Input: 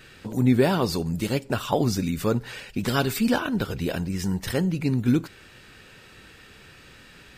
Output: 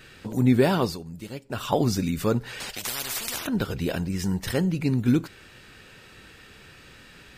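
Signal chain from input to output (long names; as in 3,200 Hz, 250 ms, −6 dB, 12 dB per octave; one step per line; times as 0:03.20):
0:00.83–0:01.64: duck −11.5 dB, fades 0.15 s
0:02.60–0:03.47: every bin compressed towards the loudest bin 10 to 1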